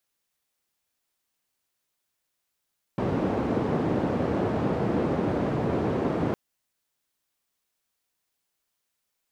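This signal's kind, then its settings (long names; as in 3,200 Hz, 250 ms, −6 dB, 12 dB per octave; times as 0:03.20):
band-limited noise 110–420 Hz, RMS −26 dBFS 3.36 s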